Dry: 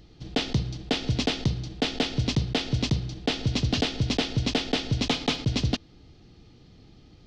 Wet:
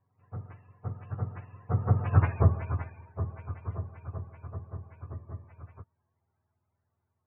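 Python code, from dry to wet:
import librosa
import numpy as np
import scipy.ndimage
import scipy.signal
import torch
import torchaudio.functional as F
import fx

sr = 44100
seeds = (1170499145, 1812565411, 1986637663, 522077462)

y = fx.octave_mirror(x, sr, pivot_hz=560.0)
y = fx.doppler_pass(y, sr, speed_mps=20, closest_m=3.3, pass_at_s=2.24)
y = scipy.ndimage.gaussian_filter1d(y, 6.5, mode='constant')
y = y * 10.0 ** (8.0 / 20.0)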